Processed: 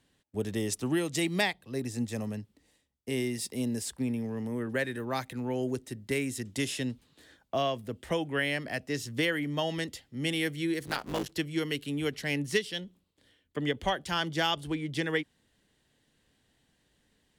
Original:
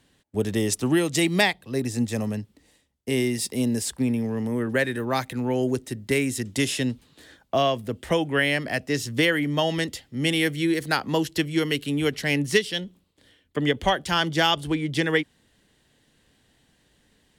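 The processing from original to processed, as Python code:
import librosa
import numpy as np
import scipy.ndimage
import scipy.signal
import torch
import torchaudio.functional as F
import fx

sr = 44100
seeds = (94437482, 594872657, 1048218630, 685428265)

y = fx.cycle_switch(x, sr, every=3, mode='muted', at=(10.86, 11.33))
y = y * librosa.db_to_amplitude(-7.5)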